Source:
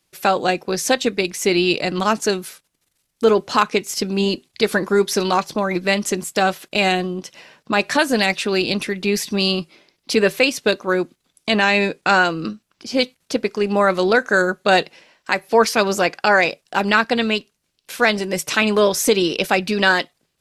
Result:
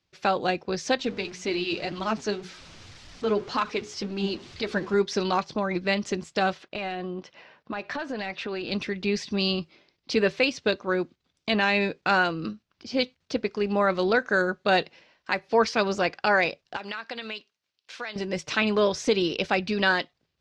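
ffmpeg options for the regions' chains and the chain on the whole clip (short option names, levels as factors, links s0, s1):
-filter_complex "[0:a]asettb=1/sr,asplit=3[s0][s1][s2];[s0]atrim=end=0.994[s3];[s1]atrim=start=0.99:end=4.94,asetpts=PTS-STARTPTS,afade=t=in:d=0.004:c=qsin,afade=t=out:st=3.946:d=0.004:c=qsin,aeval=exprs='val(0)+0.5*0.0398*sgn(val(0))':c=same,bandreject=f=60:t=h:w=6,bandreject=f=120:t=h:w=6,bandreject=f=180:t=h:w=6,bandreject=f=240:t=h:w=6,bandreject=f=300:t=h:w=6,bandreject=f=360:t=h:w=6,bandreject=f=420:t=h:w=6,bandreject=f=480:t=h:w=6,flanger=delay=3:depth=6.6:regen=40:speed=1.9:shape=sinusoidal[s4];[s2]atrim=start=4.936[s5];[s3][s4]acrossfade=d=0.004:c1=hsin:c2=qsin[s6];[s6][s5]acrossfade=d=0.004:c1=qsin:c2=hsin,asettb=1/sr,asplit=3[s7][s8][s9];[s7]atrim=end=6.634[s10];[s8]atrim=start=6.63:end=8.72,asetpts=PTS-STARTPTS,afade=t=in:d=0.004:c=qsin,afade=t=out:st=2.086:d=0.004:c=qsin,asplit=2[s11][s12];[s12]highpass=f=720:p=1,volume=3.16,asoftclip=type=tanh:threshold=0.708[s13];[s11][s13]amix=inputs=2:normalize=0,lowpass=f=1300:p=1,volume=0.501,acompressor=threshold=0.0794:ratio=4:attack=3.2:release=140:knee=1:detection=peak[s14];[s9]atrim=start=8.716[s15];[s10][s14]acrossfade=d=0.004:c1=hsin:c2=qsin[s16];[s16][s15]acrossfade=d=0.004:c1=qsin:c2=hsin,asettb=1/sr,asplit=3[s17][s18][s19];[s17]atrim=end=16.764[s20];[s18]atrim=start=16.76:end=18.16,asetpts=PTS-STARTPTS,afade=t=in:d=0.004:c=qsin,afade=t=out:st=1.396:d=0.004:c=qsin,highpass=f=920:p=1,acompressor=threshold=0.0708:ratio=6:attack=3.2:release=140:knee=1:detection=peak[s21];[s19]atrim=start=18.156[s22];[s20][s21]acrossfade=d=0.004:c1=hsin:c2=qsin[s23];[s23][s22]acrossfade=d=0.004:c1=qsin:c2=hsin,lowpass=f=5600:w=0.5412,lowpass=f=5600:w=1.3066,equalizer=f=79:w=1.4:g=10,volume=0.447"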